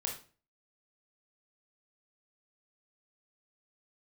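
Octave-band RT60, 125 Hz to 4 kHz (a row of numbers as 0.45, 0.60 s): 0.50, 0.45, 0.40, 0.35, 0.35, 0.30 s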